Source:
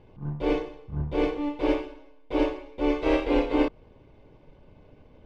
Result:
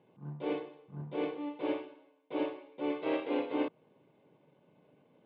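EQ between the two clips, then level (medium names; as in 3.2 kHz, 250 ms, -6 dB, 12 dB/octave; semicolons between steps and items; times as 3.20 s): elliptic band-pass 150–3600 Hz, stop band 40 dB; -8.5 dB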